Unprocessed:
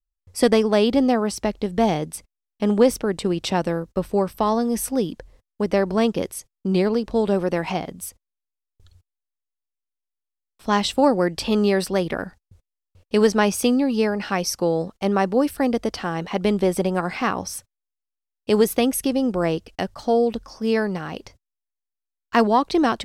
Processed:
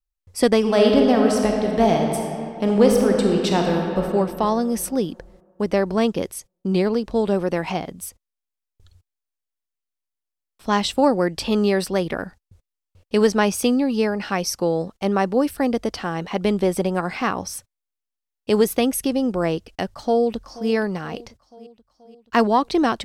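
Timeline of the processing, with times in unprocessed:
0.58–4.02 s: reverb throw, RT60 2.6 s, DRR 0.5 dB
19.91–20.70 s: echo throw 480 ms, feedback 60%, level -18 dB

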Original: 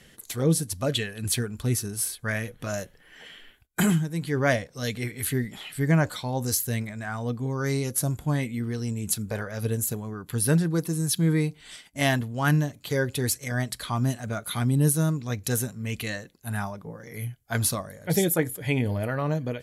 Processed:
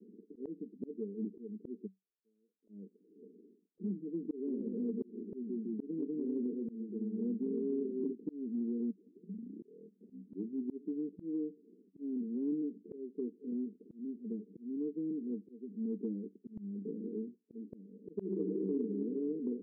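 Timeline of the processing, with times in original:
1.85–2.67 s: band-pass filter 6.2 kHz -> 1.6 kHz, Q 19
4.36–8.12 s: ever faster or slower copies 102 ms, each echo -1 st, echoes 3, each echo -6 dB
8.90 s: tape start 2.23 s
12.96–15.71 s: gain -5 dB
16.55–17.09 s: peaking EQ 200 Hz +6.5 dB 1.6 oct
18.13–18.75 s: reverb throw, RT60 1.9 s, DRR -1 dB
whole clip: Chebyshev band-pass 190–450 Hz, order 5; slow attack 544 ms; compression 4:1, threshold -40 dBFS; trim +6 dB

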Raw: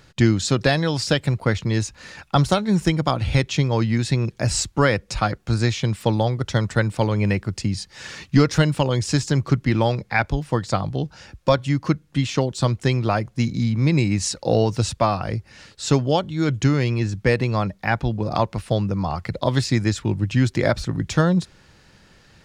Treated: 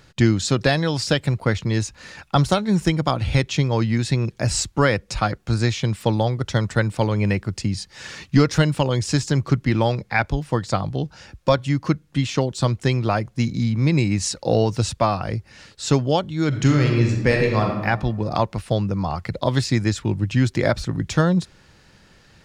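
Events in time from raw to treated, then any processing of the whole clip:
16.48–17.84 s: reverb throw, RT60 1.1 s, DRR 1 dB

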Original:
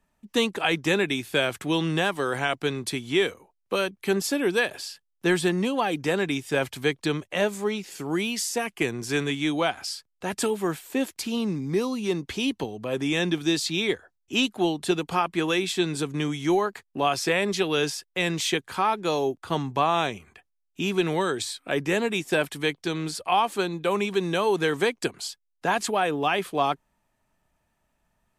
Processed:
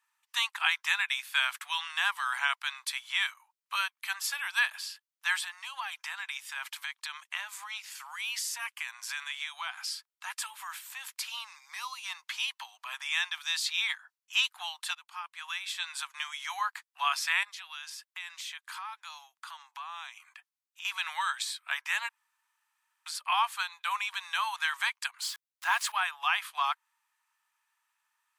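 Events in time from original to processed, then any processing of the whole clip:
5.44–11.17 s: compression, threshold -26 dBFS
14.95–15.97 s: fade in quadratic, from -16 dB
17.43–20.85 s: compression 3:1, threshold -38 dBFS
22.09–23.06 s: room tone
25.22–25.92 s: jump at every zero crossing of -37 dBFS
whole clip: steep high-pass 940 Hz 48 dB/octave; dynamic bell 7 kHz, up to -4 dB, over -45 dBFS, Q 0.73

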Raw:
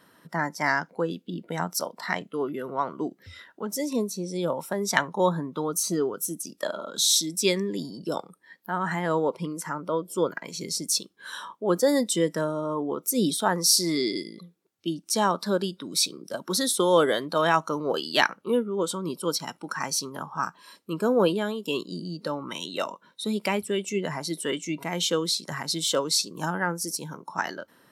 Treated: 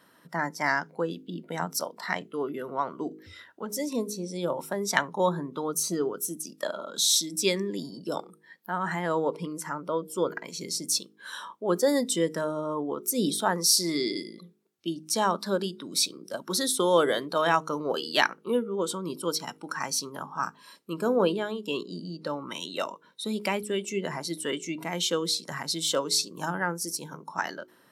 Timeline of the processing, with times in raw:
21.16–22.30 s: treble shelf 8.8 kHz -11.5 dB
whole clip: bass shelf 75 Hz -8.5 dB; de-hum 52.21 Hz, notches 9; trim -1.5 dB

